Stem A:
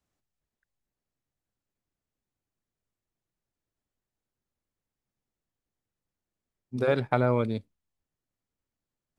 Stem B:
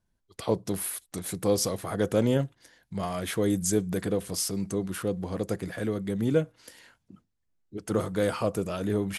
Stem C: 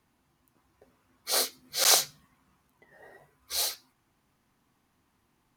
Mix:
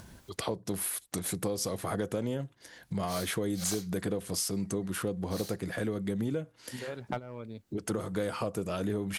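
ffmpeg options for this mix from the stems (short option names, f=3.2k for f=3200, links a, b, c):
-filter_complex "[0:a]volume=15dB,asoftclip=hard,volume=-15dB,volume=-6.5dB[a];[1:a]highpass=58,volume=0.5dB,asplit=2[b][c];[2:a]adelay=1800,volume=-12.5dB[d];[c]apad=whole_len=404918[e];[a][e]sidechaingate=range=-16dB:threshold=-49dB:ratio=16:detection=peak[f];[f][b]amix=inputs=2:normalize=0,acompressor=mode=upward:threshold=-29dB:ratio=2.5,alimiter=limit=-16dB:level=0:latency=1:release=308,volume=0dB[g];[d][g]amix=inputs=2:normalize=0,acompressor=threshold=-28dB:ratio=6"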